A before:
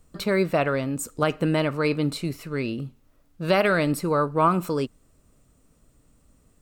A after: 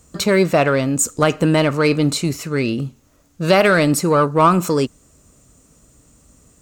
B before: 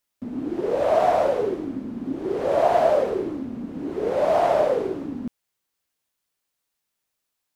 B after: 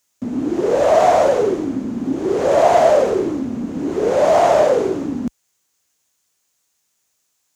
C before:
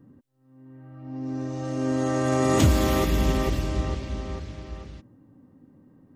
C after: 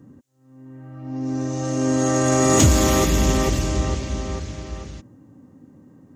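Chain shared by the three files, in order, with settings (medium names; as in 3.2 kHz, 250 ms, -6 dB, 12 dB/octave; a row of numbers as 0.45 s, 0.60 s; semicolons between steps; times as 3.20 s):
high-pass 43 Hz; peaking EQ 6.7 kHz +11 dB 0.57 oct; in parallel at -4 dB: saturation -21.5 dBFS; on the sum: peak normalisation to -2 dBFS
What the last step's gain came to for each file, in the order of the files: +4.5 dB, +4.0 dB, +1.5 dB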